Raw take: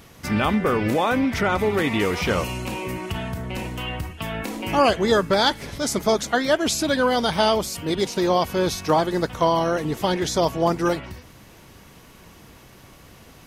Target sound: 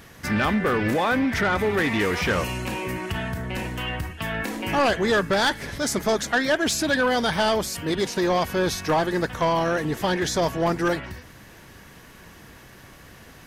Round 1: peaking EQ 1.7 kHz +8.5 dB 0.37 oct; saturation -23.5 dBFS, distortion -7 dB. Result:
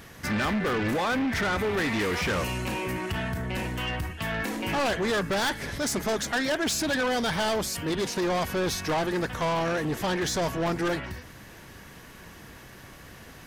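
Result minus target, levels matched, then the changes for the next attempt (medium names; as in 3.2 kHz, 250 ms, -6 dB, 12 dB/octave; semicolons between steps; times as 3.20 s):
saturation: distortion +7 dB
change: saturation -15 dBFS, distortion -14 dB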